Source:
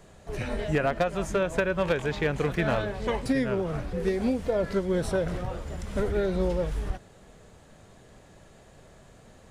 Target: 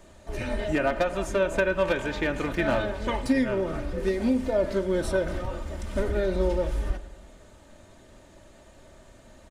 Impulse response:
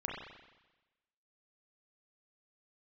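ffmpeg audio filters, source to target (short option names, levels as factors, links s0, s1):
-filter_complex "[0:a]aecho=1:1:3.3:0.57,asplit=2[s0][s1];[1:a]atrim=start_sample=2205[s2];[s1][s2]afir=irnorm=-1:irlink=0,volume=0.299[s3];[s0][s3]amix=inputs=2:normalize=0,volume=0.794"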